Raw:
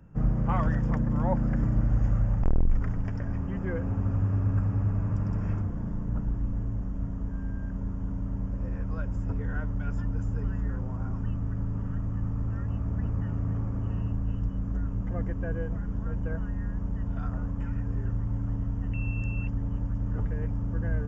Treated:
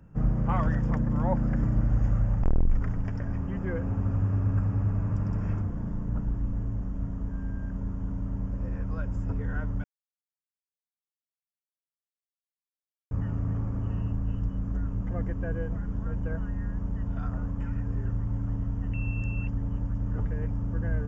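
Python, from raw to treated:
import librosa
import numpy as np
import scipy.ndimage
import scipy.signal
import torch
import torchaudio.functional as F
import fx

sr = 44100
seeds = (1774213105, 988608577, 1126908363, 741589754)

y = fx.edit(x, sr, fx.silence(start_s=9.84, length_s=3.27), tone=tone)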